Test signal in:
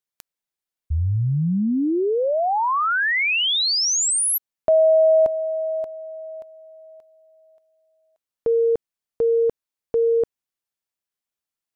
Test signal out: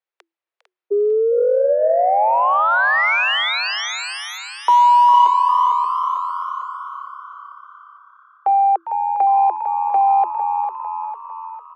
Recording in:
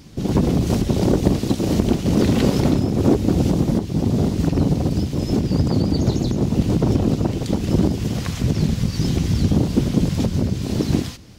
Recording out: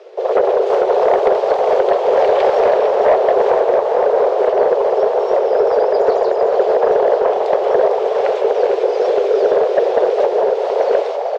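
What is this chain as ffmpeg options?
ffmpeg -i in.wav -filter_complex "[0:a]lowpass=2300,afreqshift=330,aeval=exprs='0.75*(cos(1*acos(clip(val(0)/0.75,-1,1)))-cos(1*PI/2))+0.015*(cos(7*acos(clip(val(0)/0.75,-1,1)))-cos(7*PI/2))':channel_layout=same,asplit=2[link_01][link_02];[link_02]asplit=6[link_03][link_04][link_05][link_06][link_07][link_08];[link_03]adelay=451,afreqshift=34,volume=-8dB[link_09];[link_04]adelay=902,afreqshift=68,volume=-14dB[link_10];[link_05]adelay=1353,afreqshift=102,volume=-20dB[link_11];[link_06]adelay=1804,afreqshift=136,volume=-26.1dB[link_12];[link_07]adelay=2255,afreqshift=170,volume=-32.1dB[link_13];[link_08]adelay=2706,afreqshift=204,volume=-38.1dB[link_14];[link_09][link_10][link_11][link_12][link_13][link_14]amix=inputs=6:normalize=0[link_15];[link_01][link_15]amix=inputs=2:normalize=0,asoftclip=type=tanh:threshold=-8.5dB,acontrast=37,asplit=2[link_16][link_17];[link_17]asplit=4[link_18][link_19][link_20][link_21];[link_18]adelay=403,afreqshift=120,volume=-11.5dB[link_22];[link_19]adelay=806,afreqshift=240,volume=-19.5dB[link_23];[link_20]adelay=1209,afreqshift=360,volume=-27.4dB[link_24];[link_21]adelay=1612,afreqshift=480,volume=-35.4dB[link_25];[link_22][link_23][link_24][link_25]amix=inputs=4:normalize=0[link_26];[link_16][link_26]amix=inputs=2:normalize=0" out.wav

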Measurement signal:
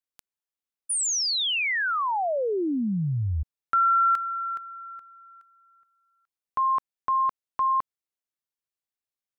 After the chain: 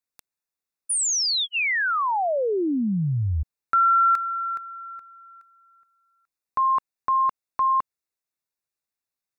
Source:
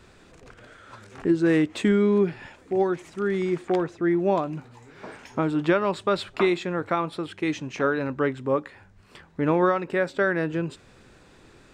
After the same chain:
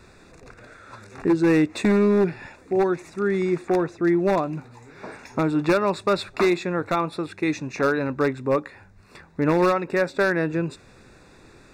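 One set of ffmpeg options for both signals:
ffmpeg -i in.wav -af "aeval=exprs='0.178*(abs(mod(val(0)/0.178+3,4)-2)-1)':channel_layout=same,asuperstop=centerf=3100:order=8:qfactor=4.9,volume=2.5dB" out.wav

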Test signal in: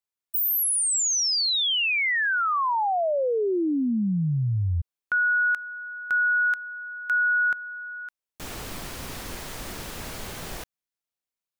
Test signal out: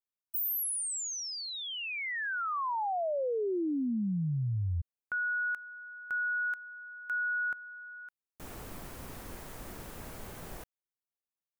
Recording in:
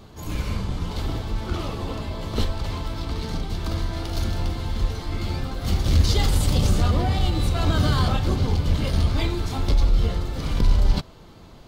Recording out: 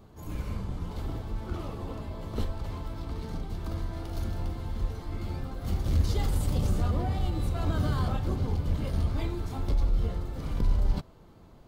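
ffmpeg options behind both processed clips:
ffmpeg -i in.wav -af "equalizer=frequency=4100:width_type=o:width=2.2:gain=-8.5,volume=-7dB" out.wav

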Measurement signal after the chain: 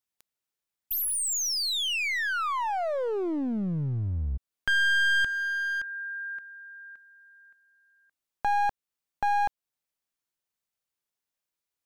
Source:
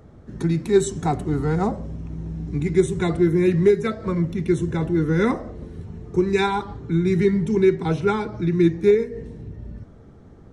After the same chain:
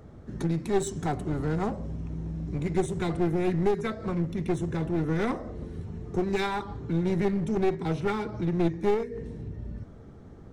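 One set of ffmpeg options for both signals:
ffmpeg -i in.wav -filter_complex "[0:a]asplit=2[link_01][link_02];[link_02]acompressor=threshold=-31dB:ratio=5,volume=1dB[link_03];[link_01][link_03]amix=inputs=2:normalize=0,aeval=exprs='clip(val(0),-1,0.0841)':channel_layout=same,volume=-7.5dB" out.wav

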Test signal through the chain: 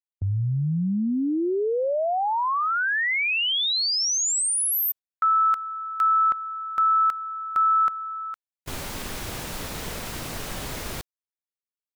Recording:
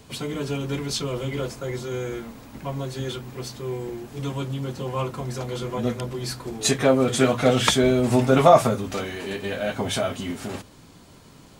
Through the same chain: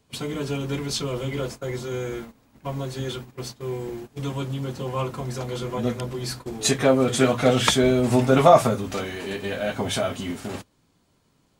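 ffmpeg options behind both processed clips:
ffmpeg -i in.wav -af "agate=range=-16dB:threshold=-35dB:ratio=16:detection=peak" out.wav

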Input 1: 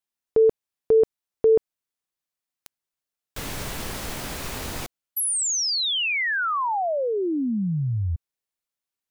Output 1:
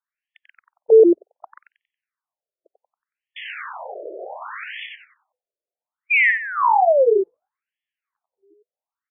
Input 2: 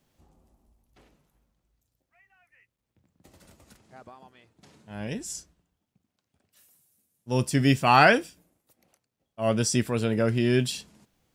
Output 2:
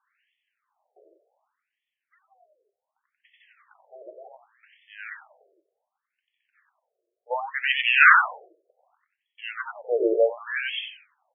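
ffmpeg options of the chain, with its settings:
ffmpeg -i in.wav -filter_complex "[0:a]asplit=6[link_01][link_02][link_03][link_04][link_05][link_06];[link_02]adelay=92,afreqshift=-100,volume=-3.5dB[link_07];[link_03]adelay=184,afreqshift=-200,volume=-12.6dB[link_08];[link_04]adelay=276,afreqshift=-300,volume=-21.7dB[link_09];[link_05]adelay=368,afreqshift=-400,volume=-30.9dB[link_10];[link_06]adelay=460,afreqshift=-500,volume=-40dB[link_11];[link_01][link_07][link_08][link_09][link_10][link_11]amix=inputs=6:normalize=0,afftfilt=real='re*between(b*sr/1024,470*pow(2500/470,0.5+0.5*sin(2*PI*0.67*pts/sr))/1.41,470*pow(2500/470,0.5+0.5*sin(2*PI*0.67*pts/sr))*1.41)':imag='im*between(b*sr/1024,470*pow(2500/470,0.5+0.5*sin(2*PI*0.67*pts/sr))/1.41,470*pow(2500/470,0.5+0.5*sin(2*PI*0.67*pts/sr))*1.41)':win_size=1024:overlap=0.75,volume=7.5dB" out.wav

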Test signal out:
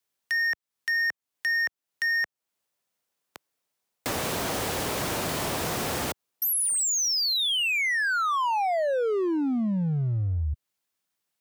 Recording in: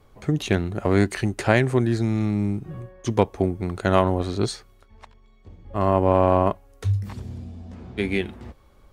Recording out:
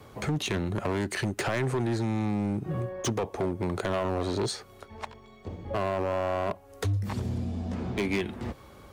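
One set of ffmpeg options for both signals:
ffmpeg -i in.wav -filter_complex "[0:a]highpass=89,acrossover=split=420|870[link_01][link_02][link_03];[link_02]dynaudnorm=framelen=200:gausssize=21:maxgain=6.5dB[link_04];[link_01][link_04][link_03]amix=inputs=3:normalize=0,alimiter=limit=-12.5dB:level=0:latency=1:release=23,acompressor=threshold=-37dB:ratio=2.5,asoftclip=type=hard:threshold=-32.5dB,volume=9dB" out.wav

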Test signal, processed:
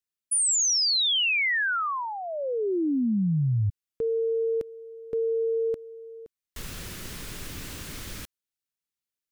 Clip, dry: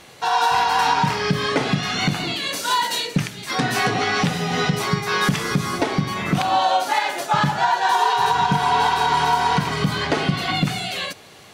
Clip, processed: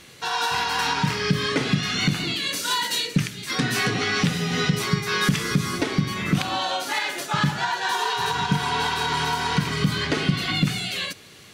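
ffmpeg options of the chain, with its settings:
ffmpeg -i in.wav -af "equalizer=frequency=760:width_type=o:width=1.1:gain=-11" out.wav

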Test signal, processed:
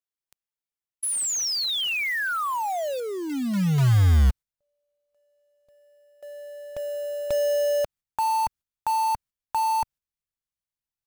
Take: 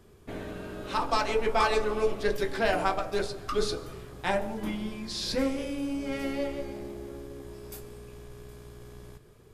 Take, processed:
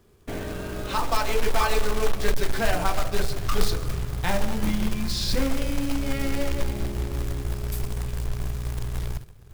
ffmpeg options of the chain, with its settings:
ffmpeg -i in.wav -filter_complex "[0:a]asplit=2[link_01][link_02];[link_02]acompressor=threshold=-34dB:ratio=16,volume=1dB[link_03];[link_01][link_03]amix=inputs=2:normalize=0,agate=range=-9dB:threshold=-44dB:ratio=16:detection=peak,asubboost=boost=6:cutoff=140,acontrast=87,acrusher=bits=3:mode=log:mix=0:aa=0.000001,volume=-7.5dB" out.wav

